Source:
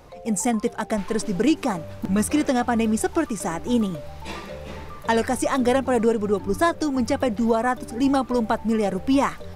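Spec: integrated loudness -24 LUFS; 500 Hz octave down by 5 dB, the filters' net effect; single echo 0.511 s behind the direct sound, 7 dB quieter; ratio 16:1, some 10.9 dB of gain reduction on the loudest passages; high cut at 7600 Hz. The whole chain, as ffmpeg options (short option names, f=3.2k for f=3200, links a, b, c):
-af "lowpass=7.6k,equalizer=f=500:t=o:g=-6,acompressor=threshold=-28dB:ratio=16,aecho=1:1:511:0.447,volume=9dB"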